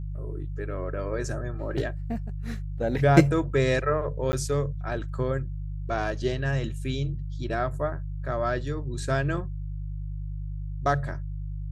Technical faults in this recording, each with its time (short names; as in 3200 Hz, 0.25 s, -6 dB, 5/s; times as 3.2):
hum 50 Hz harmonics 3 -33 dBFS
4.32–4.33 gap 10 ms